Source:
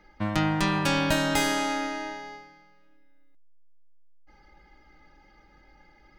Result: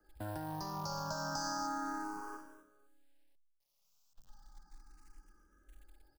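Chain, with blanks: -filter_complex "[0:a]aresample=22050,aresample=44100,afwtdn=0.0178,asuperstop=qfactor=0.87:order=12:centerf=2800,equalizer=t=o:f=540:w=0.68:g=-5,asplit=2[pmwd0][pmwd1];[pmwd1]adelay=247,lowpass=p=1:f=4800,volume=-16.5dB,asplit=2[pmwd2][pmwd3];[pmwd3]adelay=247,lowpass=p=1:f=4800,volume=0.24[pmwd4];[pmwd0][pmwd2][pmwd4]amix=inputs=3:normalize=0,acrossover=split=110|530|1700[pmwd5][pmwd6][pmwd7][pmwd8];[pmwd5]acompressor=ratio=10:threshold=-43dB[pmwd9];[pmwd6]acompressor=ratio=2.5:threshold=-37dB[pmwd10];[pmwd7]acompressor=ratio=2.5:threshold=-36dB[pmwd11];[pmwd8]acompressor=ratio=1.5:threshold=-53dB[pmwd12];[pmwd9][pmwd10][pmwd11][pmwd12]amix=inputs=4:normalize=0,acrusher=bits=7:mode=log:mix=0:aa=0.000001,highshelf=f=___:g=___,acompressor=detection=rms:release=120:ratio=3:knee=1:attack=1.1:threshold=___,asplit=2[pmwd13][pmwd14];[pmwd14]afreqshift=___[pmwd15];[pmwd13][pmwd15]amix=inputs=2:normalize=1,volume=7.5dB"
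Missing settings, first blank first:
2000, 11, -43dB, 0.34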